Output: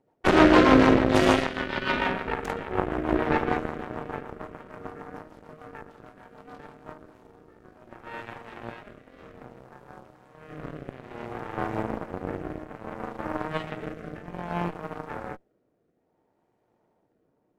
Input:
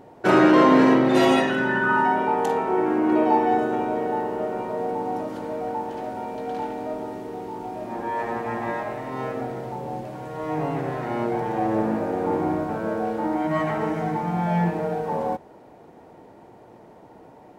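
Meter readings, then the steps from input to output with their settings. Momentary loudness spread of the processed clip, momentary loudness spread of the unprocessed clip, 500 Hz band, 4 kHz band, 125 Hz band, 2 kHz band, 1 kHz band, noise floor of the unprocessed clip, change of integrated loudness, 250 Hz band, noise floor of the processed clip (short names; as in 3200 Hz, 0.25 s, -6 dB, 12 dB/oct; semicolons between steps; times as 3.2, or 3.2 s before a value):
23 LU, 14 LU, -5.0 dB, +1.0 dB, -3.5 dB, -2.5 dB, -6.5 dB, -49 dBFS, -1.5 dB, -4.0 dB, -72 dBFS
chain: added harmonics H 3 -40 dB, 4 -12 dB, 7 -18 dB, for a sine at -4.5 dBFS; rotary speaker horn 6.7 Hz, later 0.6 Hz, at 6.51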